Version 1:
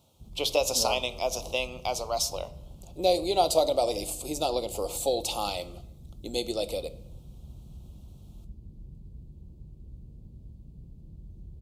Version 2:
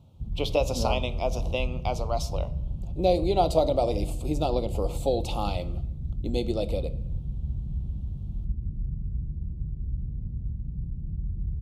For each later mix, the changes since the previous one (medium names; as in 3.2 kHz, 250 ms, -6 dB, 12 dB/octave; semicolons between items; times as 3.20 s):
master: add tone controls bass +15 dB, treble -13 dB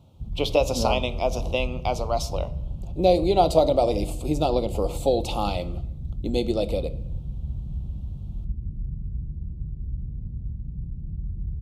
speech +4.0 dB